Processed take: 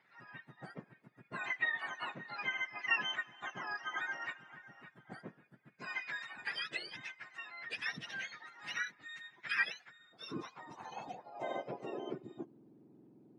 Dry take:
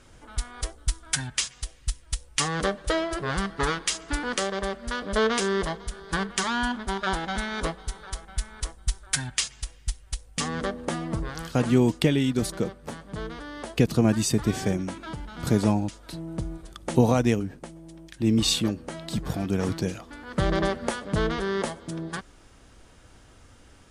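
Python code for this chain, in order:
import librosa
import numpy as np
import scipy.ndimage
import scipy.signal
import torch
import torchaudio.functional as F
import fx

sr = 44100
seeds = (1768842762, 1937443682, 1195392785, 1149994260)

y = fx.octave_mirror(x, sr, pivot_hz=1100.0)
y = scipy.signal.sosfilt(scipy.signal.butter(2, 5900.0, 'lowpass', fs=sr, output='sos'), y)
y = fx.stretch_vocoder_free(y, sr, factor=0.56)
y = fx.filter_sweep_bandpass(y, sr, from_hz=1800.0, to_hz=310.0, start_s=9.73, end_s=12.49, q=4.0)
y = y * librosa.db_to_amplitude(5.0)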